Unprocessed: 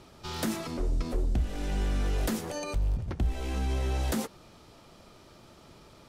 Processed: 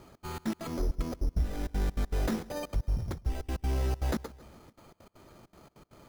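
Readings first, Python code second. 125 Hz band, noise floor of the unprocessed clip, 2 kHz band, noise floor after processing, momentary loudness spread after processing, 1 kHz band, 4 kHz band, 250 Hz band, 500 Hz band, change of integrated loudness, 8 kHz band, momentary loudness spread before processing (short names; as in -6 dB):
-1.5 dB, -55 dBFS, -3.5 dB, -74 dBFS, 5 LU, -2.5 dB, -6.0 dB, -1.5 dB, -2.0 dB, -2.0 dB, -6.5 dB, 3 LU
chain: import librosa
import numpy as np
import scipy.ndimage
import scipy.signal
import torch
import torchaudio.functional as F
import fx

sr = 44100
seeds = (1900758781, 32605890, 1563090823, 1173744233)

p1 = fx.step_gate(x, sr, bpm=198, pattern='xx.xx.x.xx', floor_db=-60.0, edge_ms=4.5)
p2 = p1 + fx.echo_feedback(p1, sr, ms=139, feedback_pct=58, wet_db=-21.5, dry=0)
y = np.repeat(scipy.signal.resample_poly(p2, 1, 8), 8)[:len(p2)]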